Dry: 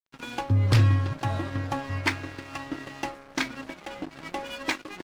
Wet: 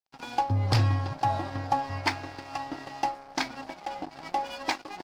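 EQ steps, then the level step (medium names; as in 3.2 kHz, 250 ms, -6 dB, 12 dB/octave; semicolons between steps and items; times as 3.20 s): peaking EQ 790 Hz +14 dB 0.55 oct; peaking EQ 4.9 kHz +8.5 dB 0.47 oct; -4.5 dB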